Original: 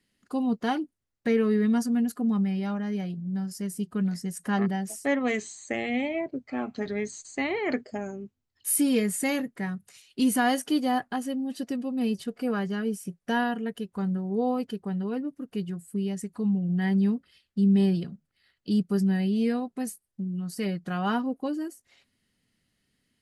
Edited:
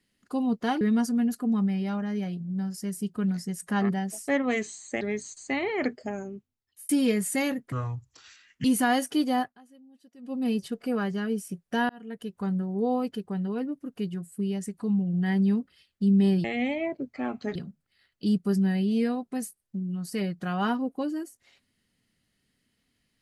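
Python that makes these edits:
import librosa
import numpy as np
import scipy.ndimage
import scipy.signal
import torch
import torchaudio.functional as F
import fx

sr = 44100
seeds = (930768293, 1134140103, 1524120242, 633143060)

y = fx.edit(x, sr, fx.cut(start_s=0.81, length_s=0.77),
    fx.move(start_s=5.78, length_s=1.11, to_s=18.0),
    fx.fade_out_span(start_s=8.16, length_s=0.61),
    fx.speed_span(start_s=9.6, length_s=0.6, speed=0.65),
    fx.fade_down_up(start_s=10.95, length_s=0.95, db=-23.5, fade_s=0.2, curve='qua'),
    fx.fade_in_span(start_s=13.45, length_s=0.46), tone=tone)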